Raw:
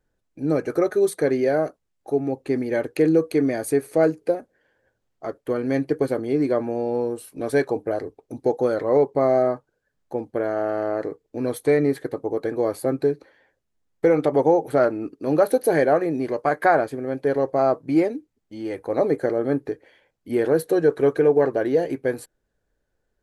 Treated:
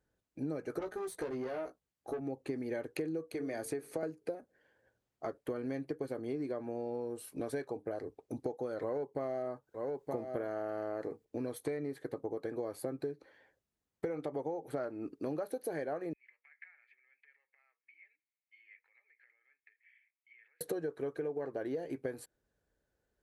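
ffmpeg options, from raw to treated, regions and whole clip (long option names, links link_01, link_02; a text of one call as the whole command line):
ffmpeg -i in.wav -filter_complex "[0:a]asettb=1/sr,asplit=3[link_01][link_02][link_03];[link_01]atrim=end=0.794[link_04];[link_02]atrim=start=0.79:end=2.21,asetpts=PTS-STARTPTS,afade=type=in:duration=0.004:curve=qsin,afade=type=out:start_time=1.416:duration=0.004:curve=qsin,aeval=exprs='(tanh(10*val(0)+0.5)-tanh(0.5))/10':channel_layout=same,asplit=2[link_05][link_06];[link_06]adelay=16,volume=-4dB[link_07];[link_05][link_07]amix=inputs=2:normalize=0,atrim=end_sample=62622[link_08];[link_03]atrim=start=2.206[link_09];[link_04][link_08]acrossfade=duration=0.004:curve1=hsin:curve2=qsin[link_10];[link_10][link_09]acrossfade=duration=0.004:curve1=qsin:curve2=hsin,asettb=1/sr,asplit=3[link_11][link_12][link_13];[link_11]atrim=end=3.344[link_14];[link_12]atrim=start=3.34:end=4.03,asetpts=PTS-STARTPTS,afade=type=in:duration=0.004:curve=qsin,afade=type=out:start_time=0.686:duration=0.004:curve=qsin,acrossover=split=380|6500[link_15][link_16][link_17];[link_15]acompressor=threshold=-29dB:ratio=4[link_18];[link_16]acompressor=threshold=-22dB:ratio=4[link_19];[link_17]acompressor=threshold=-40dB:ratio=4[link_20];[link_18][link_19][link_20]amix=inputs=3:normalize=0,bandreject=frequency=50:width_type=h:width=6,bandreject=frequency=100:width_type=h:width=6,bandreject=frequency=150:width_type=h:width=6,bandreject=frequency=200:width_type=h:width=6,bandreject=frequency=250:width_type=h:width=6,bandreject=frequency=300:width_type=h:width=6,bandreject=frequency=350:width_type=h:width=6,bandreject=frequency=400:width_type=h:width=6,bandreject=frequency=450:width_type=h:width=6[link_21];[link_13]atrim=start=4.026[link_22];[link_14][link_21]acrossfade=duration=0.004:curve1=hsin:curve2=qsin[link_23];[link_23][link_22]acrossfade=duration=0.004:curve1=qsin:curve2=hsin,asettb=1/sr,asplit=3[link_24][link_25][link_26];[link_24]atrim=end=8.824[link_27];[link_25]atrim=start=8.82:end=11.25,asetpts=PTS-STARTPTS,afade=type=in:duration=0.004:curve=qsin,afade=type=out:start_time=2.426:duration=0.004:curve=qsin,acontrast=46,highshelf=frequency=8800:gain=7,aecho=1:1:922:0.168,atrim=end_sample=107163[link_28];[link_26]atrim=start=11.246[link_29];[link_27][link_28]acrossfade=duration=0.004:curve1=hsin:curve2=qsin[link_30];[link_30][link_29]acrossfade=duration=0.004:curve1=qsin:curve2=hsin,asettb=1/sr,asplit=3[link_31][link_32][link_33];[link_31]atrim=end=16.134[link_34];[link_32]atrim=start=16.13:end=20.61,asetpts=PTS-STARTPTS,afade=type=in:duration=0.004:curve=qsin,afade=type=out:start_time=4.476:duration=0.004:curve=qsin,acompressor=threshold=-32dB:ratio=16:attack=3.2:release=140:knee=1:detection=peak,asuperpass=centerf=2200:order=4:qfactor=3.7,aecho=1:1:2.3:0.39,atrim=end_sample=197568[link_35];[link_33]atrim=start=20.606[link_36];[link_34][link_35]acrossfade=duration=0.004:curve1=hsin:curve2=qsin[link_37];[link_37][link_36]acrossfade=duration=0.004:curve1=qsin:curve2=hsin,acompressor=threshold=-29dB:ratio=12,highpass=44,volume=-5dB" out.wav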